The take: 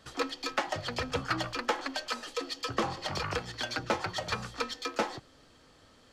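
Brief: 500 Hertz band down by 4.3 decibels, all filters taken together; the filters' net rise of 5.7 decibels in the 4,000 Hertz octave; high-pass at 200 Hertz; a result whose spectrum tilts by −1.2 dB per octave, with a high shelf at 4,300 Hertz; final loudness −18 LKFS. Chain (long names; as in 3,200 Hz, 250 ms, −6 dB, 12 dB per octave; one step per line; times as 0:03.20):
high-pass filter 200 Hz
parametric band 500 Hz −5 dB
parametric band 4,000 Hz +4 dB
high-shelf EQ 4,300 Hz +5.5 dB
level +14 dB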